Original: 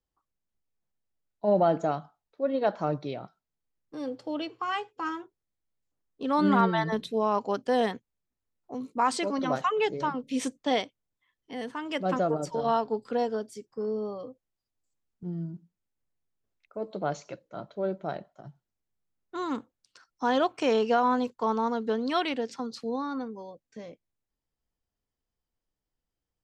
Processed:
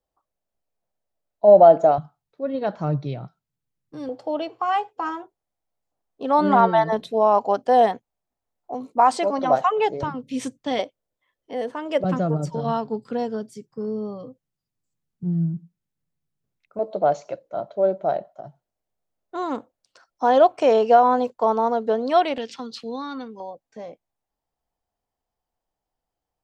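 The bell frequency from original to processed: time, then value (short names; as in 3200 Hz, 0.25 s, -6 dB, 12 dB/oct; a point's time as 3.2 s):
bell +14 dB 0.99 oct
640 Hz
from 1.98 s 130 Hz
from 4.09 s 720 Hz
from 10.03 s 110 Hz
from 10.79 s 560 Hz
from 12.04 s 150 Hz
from 16.79 s 640 Hz
from 22.38 s 3000 Hz
from 23.4 s 760 Hz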